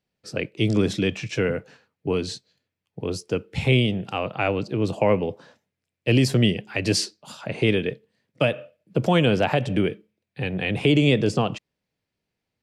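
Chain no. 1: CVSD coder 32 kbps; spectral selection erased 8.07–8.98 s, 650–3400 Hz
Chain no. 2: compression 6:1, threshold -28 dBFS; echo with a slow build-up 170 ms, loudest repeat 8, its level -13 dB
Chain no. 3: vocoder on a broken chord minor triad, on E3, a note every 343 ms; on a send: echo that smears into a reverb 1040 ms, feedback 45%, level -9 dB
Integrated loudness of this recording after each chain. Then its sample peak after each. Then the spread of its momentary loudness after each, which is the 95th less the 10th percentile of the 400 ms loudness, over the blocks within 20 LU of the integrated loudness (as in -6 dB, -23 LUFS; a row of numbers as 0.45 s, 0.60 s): -24.5 LUFS, -32.0 LUFS, -25.0 LUFS; -8.0 dBFS, -12.5 dBFS, -8.0 dBFS; 14 LU, 5 LU, 14 LU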